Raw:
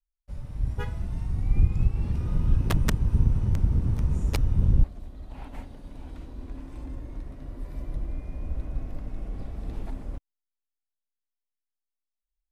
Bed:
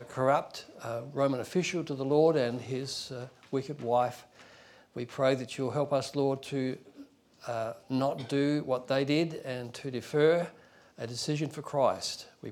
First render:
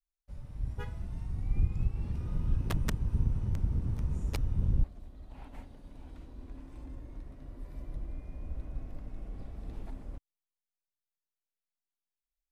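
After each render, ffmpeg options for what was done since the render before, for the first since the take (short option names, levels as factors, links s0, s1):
-af "volume=0.422"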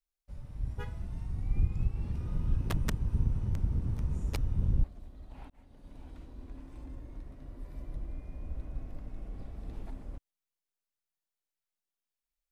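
-filter_complex "[0:a]asplit=2[s0][s1];[s0]atrim=end=5.5,asetpts=PTS-STARTPTS,afade=t=out:st=5.496:d=0.004:c=hsin[s2];[s1]atrim=start=5.5,asetpts=PTS-STARTPTS,afade=t=in:d=0.42[s3];[s2][s3]concat=n=2:v=0:a=1"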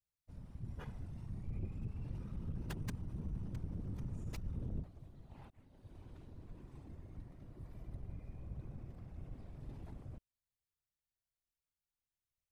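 -af "asoftclip=type=tanh:threshold=0.0299,afftfilt=real='hypot(re,im)*cos(2*PI*random(0))':imag='hypot(re,im)*sin(2*PI*random(1))':win_size=512:overlap=0.75"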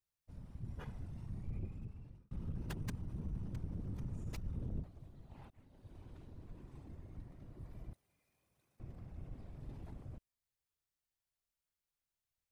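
-filter_complex "[0:a]asettb=1/sr,asplit=3[s0][s1][s2];[s0]atrim=end=7.934[s3];[s1]atrim=start=7.93:end=8.8,asetpts=PTS-STARTPTS,afade=t=in:d=0.004:c=qsin,afade=t=out:st=0.866:d=0.004:c=qsin,aderivative[s4];[s2]atrim=start=8.796[s5];[s3][s4]acrossfade=d=0.004:c1=hsin:c2=qsin[s6];[s6][s5]acrossfade=d=0.004:c1=qsin:c2=hsin,asplit=2[s7][s8];[s7]atrim=end=2.31,asetpts=PTS-STARTPTS,afade=t=out:st=1.52:d=0.79[s9];[s8]atrim=start=2.31,asetpts=PTS-STARTPTS,afade=t=in:d=0.004:c=hsin[s10];[s9][s10]concat=n=2:v=0:a=1"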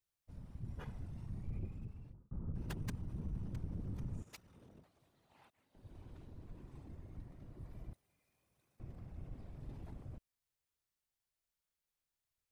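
-filter_complex "[0:a]asplit=3[s0][s1][s2];[s0]afade=t=out:st=2.12:d=0.02[s3];[s1]lowpass=f=1400:w=0.5412,lowpass=f=1400:w=1.3066,afade=t=in:st=2.12:d=0.02,afade=t=out:st=2.54:d=0.02[s4];[s2]afade=t=in:st=2.54:d=0.02[s5];[s3][s4][s5]amix=inputs=3:normalize=0,asettb=1/sr,asplit=3[s6][s7][s8];[s6]atrim=end=4.224[s9];[s7]atrim=start=4.22:end=5.75,asetpts=PTS-STARTPTS,afade=t=in:d=0.004:c=qsin,afade=t=out:st=1.526:d=0.004:c=qsin,highpass=f=1300:p=1[s10];[s8]atrim=start=5.746[s11];[s9][s10]acrossfade=d=0.004:c1=hsin:c2=qsin[s12];[s12][s11]acrossfade=d=0.004:c1=qsin:c2=hsin"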